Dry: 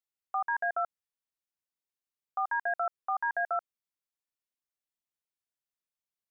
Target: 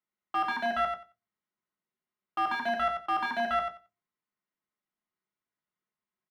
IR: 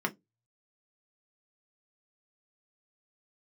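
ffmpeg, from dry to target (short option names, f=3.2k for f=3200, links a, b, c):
-filter_complex "[0:a]aemphasis=mode=reproduction:type=75kf,volume=31dB,asoftclip=hard,volume=-31dB,aecho=1:1:90|180|270:0.473|0.0757|0.0121[a];[1:a]atrim=start_sample=2205,afade=t=out:st=0.38:d=0.01,atrim=end_sample=17199[b];[a][b]afir=irnorm=-1:irlink=0"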